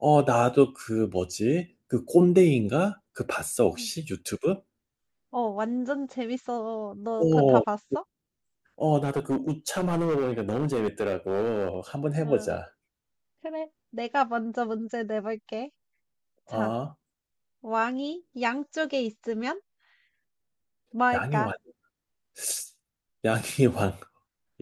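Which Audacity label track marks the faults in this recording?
9.030000	11.770000	clipping −21.5 dBFS

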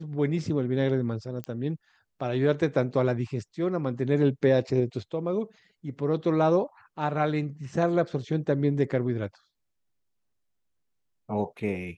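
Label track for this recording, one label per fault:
1.440000	1.440000	click −21 dBFS

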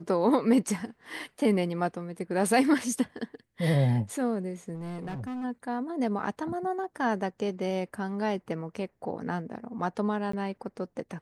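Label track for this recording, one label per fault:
4.740000	5.450000	clipping −32.5 dBFS
10.320000	10.330000	drop-out 14 ms

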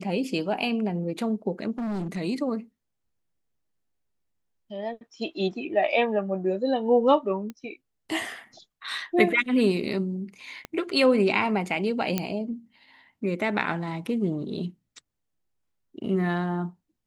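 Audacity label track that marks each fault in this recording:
1.780000	2.180000	clipping −27.5 dBFS
7.500000	7.500000	click −24 dBFS
10.650000	10.650000	click −19 dBFS
12.180000	12.180000	click −10 dBFS

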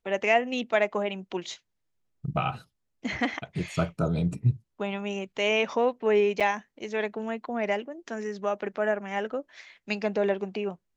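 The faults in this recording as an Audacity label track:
6.400000	6.410000	drop-out 6.4 ms

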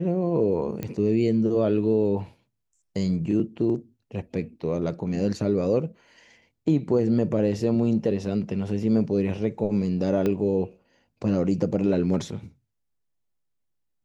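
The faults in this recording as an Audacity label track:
0.830000	0.830000	click −17 dBFS
10.260000	10.260000	click −14 dBFS

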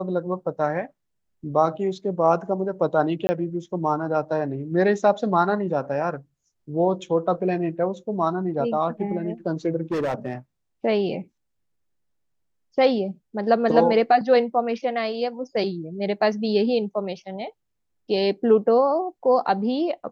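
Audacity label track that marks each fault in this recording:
3.270000	3.290000	drop-out 20 ms
9.920000	10.330000	clipping −21 dBFS

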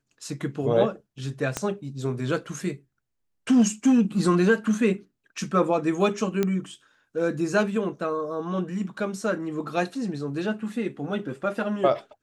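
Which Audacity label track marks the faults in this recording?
1.570000	1.570000	click −11 dBFS
6.430000	6.430000	click −11 dBFS

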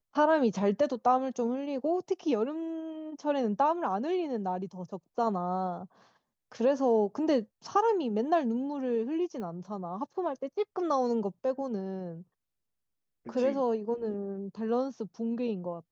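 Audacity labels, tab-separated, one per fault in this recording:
9.400000	9.400000	click −29 dBFS

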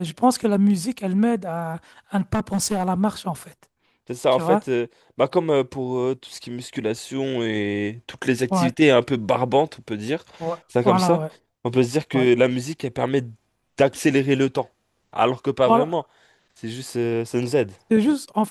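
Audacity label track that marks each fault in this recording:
2.170000	2.890000	clipping −17 dBFS

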